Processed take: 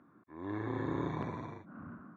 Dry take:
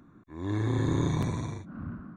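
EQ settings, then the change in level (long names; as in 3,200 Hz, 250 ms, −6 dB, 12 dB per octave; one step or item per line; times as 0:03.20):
high-pass filter 470 Hz 6 dB per octave
low-pass filter 1,800 Hz 12 dB per octave
−1.0 dB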